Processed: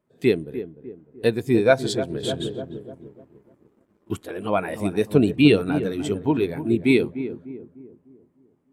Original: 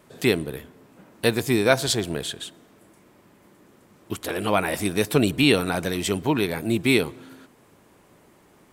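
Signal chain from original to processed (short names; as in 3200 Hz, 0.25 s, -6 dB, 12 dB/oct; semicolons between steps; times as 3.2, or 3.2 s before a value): darkening echo 0.3 s, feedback 57%, low-pass 1400 Hz, level -7.5 dB; 2.23–4.23 sample leveller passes 2; spectral expander 1.5:1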